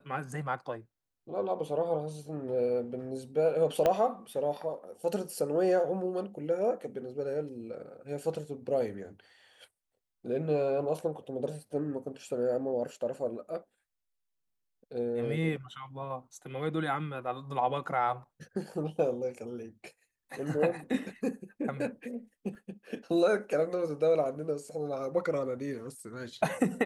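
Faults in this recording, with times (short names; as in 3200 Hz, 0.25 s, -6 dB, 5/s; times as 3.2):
3.86 pop -14 dBFS
22.55 gap 2.6 ms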